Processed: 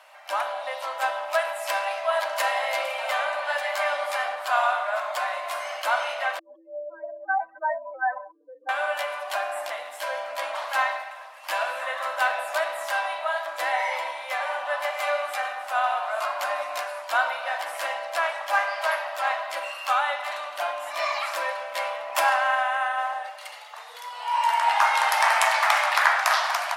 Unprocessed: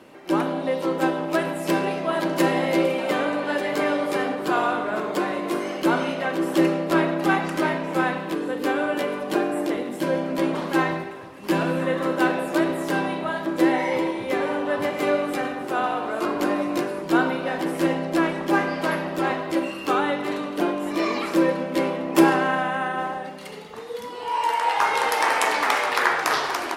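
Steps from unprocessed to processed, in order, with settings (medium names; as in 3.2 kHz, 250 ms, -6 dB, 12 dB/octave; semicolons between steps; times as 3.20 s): 6.39–8.69 s: spectral contrast enhancement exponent 4; elliptic high-pass 630 Hz, stop band 40 dB; trim +1.5 dB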